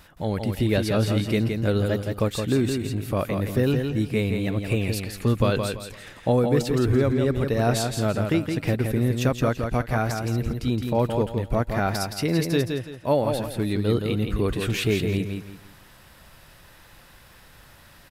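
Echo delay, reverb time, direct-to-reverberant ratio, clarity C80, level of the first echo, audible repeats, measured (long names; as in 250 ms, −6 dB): 168 ms, no reverb audible, no reverb audible, no reverb audible, −5.5 dB, 3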